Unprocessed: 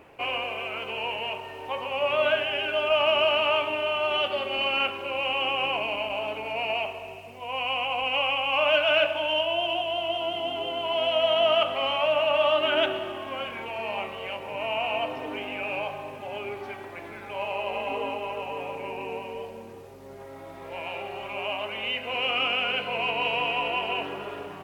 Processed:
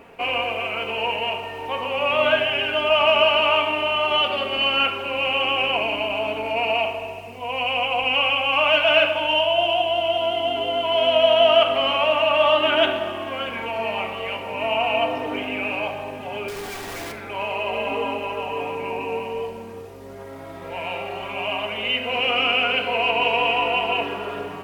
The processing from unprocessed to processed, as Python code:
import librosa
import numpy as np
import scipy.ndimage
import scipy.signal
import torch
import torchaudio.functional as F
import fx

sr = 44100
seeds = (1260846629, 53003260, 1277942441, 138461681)

y = fx.clip_1bit(x, sr, at=(16.48, 17.12))
y = fx.room_shoebox(y, sr, seeds[0], volume_m3=3100.0, walls='furnished', distance_m=1.7)
y = y * librosa.db_to_amplitude(4.5)